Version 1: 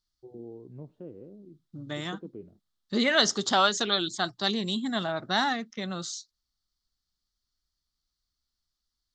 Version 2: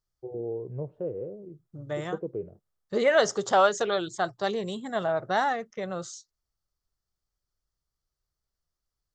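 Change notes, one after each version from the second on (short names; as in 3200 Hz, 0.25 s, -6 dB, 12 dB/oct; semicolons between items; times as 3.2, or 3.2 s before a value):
first voice +6.5 dB; master: add ten-band EQ 125 Hz +5 dB, 250 Hz -11 dB, 500 Hz +11 dB, 4000 Hz -12 dB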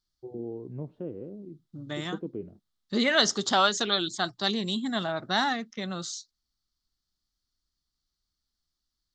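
master: add ten-band EQ 125 Hz -5 dB, 250 Hz +11 dB, 500 Hz -11 dB, 4000 Hz +12 dB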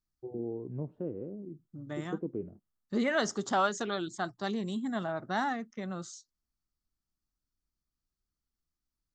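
second voice -3.0 dB; master: add bell 3900 Hz -14 dB 1.3 oct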